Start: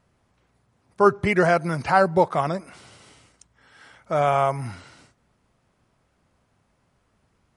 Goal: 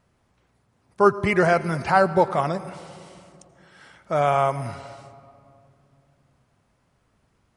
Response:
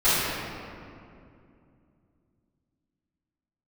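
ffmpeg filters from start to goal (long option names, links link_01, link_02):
-filter_complex "[0:a]asplit=2[link_01][link_02];[link_02]highshelf=frequency=8500:gain=-10[link_03];[1:a]atrim=start_sample=2205,highshelf=frequency=4500:gain=7.5,adelay=78[link_04];[link_03][link_04]afir=irnorm=-1:irlink=0,volume=-34.5dB[link_05];[link_01][link_05]amix=inputs=2:normalize=0"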